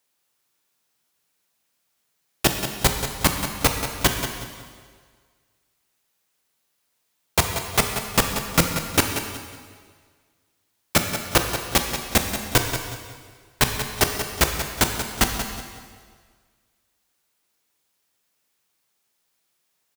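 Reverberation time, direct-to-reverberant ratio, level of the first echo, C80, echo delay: 1.7 s, 3.5 dB, −10.0 dB, 5.0 dB, 183 ms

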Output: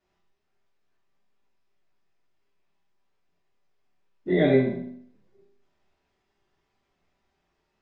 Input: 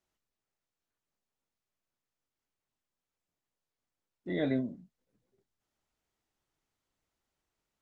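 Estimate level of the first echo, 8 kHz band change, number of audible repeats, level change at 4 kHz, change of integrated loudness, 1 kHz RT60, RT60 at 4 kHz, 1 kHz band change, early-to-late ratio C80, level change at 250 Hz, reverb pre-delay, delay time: no echo audible, can't be measured, no echo audible, +8.5 dB, +11.0 dB, 0.60 s, 0.60 s, +12.0 dB, 7.5 dB, +9.0 dB, 5 ms, no echo audible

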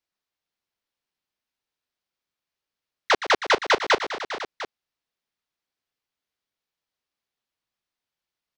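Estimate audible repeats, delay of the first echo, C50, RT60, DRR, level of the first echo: 4, 118 ms, no reverb audible, no reverb audible, no reverb audible, −12.5 dB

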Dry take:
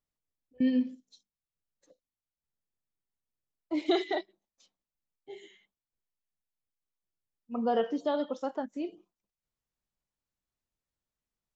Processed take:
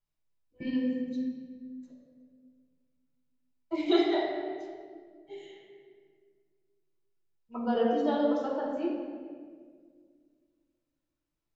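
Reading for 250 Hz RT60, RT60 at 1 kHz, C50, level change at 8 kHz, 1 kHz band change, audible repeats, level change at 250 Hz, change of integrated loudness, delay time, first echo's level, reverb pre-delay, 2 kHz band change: 2.7 s, 1.6 s, 1.5 dB, can't be measured, +1.5 dB, no echo audible, +2.0 dB, +1.0 dB, no echo audible, no echo audible, 3 ms, +1.5 dB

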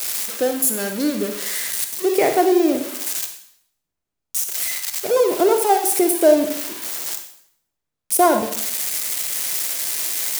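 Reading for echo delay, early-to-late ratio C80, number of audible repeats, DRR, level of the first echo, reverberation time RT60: no echo audible, 10.5 dB, no echo audible, 6.0 dB, no echo audible, 0.70 s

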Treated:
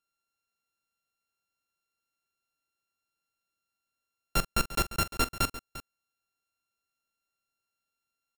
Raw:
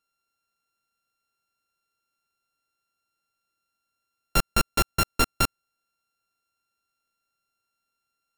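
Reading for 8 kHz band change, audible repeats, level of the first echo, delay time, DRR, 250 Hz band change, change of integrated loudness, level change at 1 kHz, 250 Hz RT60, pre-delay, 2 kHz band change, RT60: −4.5 dB, 2, −15.5 dB, 44 ms, no reverb audible, −5.0 dB, −5.0 dB, −5.0 dB, no reverb audible, no reverb audible, −4.5 dB, no reverb audible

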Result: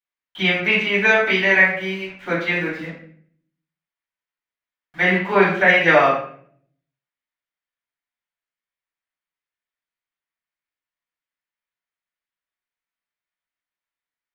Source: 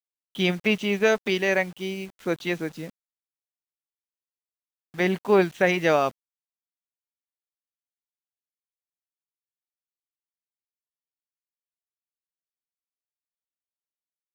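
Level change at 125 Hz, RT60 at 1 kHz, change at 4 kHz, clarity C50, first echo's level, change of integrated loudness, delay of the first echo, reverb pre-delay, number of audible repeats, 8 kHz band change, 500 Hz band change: +3.5 dB, 0.50 s, +6.0 dB, 3.5 dB, no echo audible, +7.0 dB, no echo audible, 3 ms, no echo audible, can't be measured, +3.0 dB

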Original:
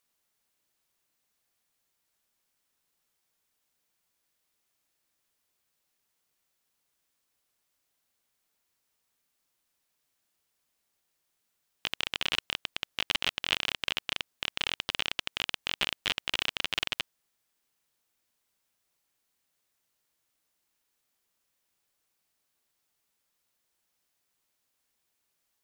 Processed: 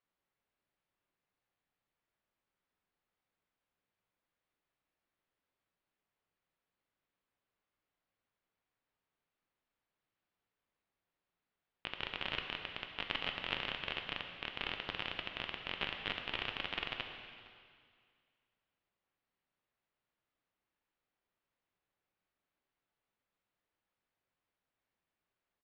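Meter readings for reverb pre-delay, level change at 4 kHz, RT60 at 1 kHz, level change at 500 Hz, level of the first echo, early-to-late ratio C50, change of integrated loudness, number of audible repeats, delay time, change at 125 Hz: 5 ms, −10.0 dB, 2.1 s, −3.0 dB, −21.0 dB, 5.5 dB, −8.5 dB, 1, 462 ms, −2.5 dB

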